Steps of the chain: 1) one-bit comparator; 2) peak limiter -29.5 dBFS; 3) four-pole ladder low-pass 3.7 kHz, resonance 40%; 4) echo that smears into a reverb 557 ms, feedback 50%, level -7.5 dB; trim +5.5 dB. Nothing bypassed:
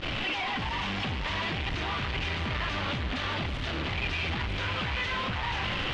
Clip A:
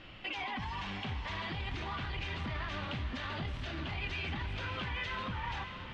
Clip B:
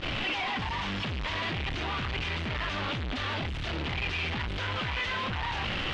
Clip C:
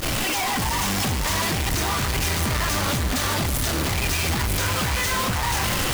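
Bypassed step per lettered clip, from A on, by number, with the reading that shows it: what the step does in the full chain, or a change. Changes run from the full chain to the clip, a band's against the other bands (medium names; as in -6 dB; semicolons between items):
1, distortion -1 dB; 4, echo-to-direct -6.5 dB to none; 3, 8 kHz band +19.0 dB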